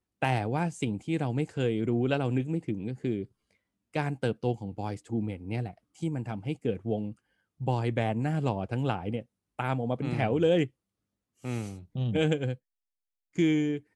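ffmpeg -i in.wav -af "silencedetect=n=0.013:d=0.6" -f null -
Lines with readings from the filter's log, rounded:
silence_start: 3.24
silence_end: 3.95 | silence_duration: 0.71
silence_start: 10.67
silence_end: 11.44 | silence_duration: 0.78
silence_start: 12.55
silence_end: 13.38 | silence_duration: 0.83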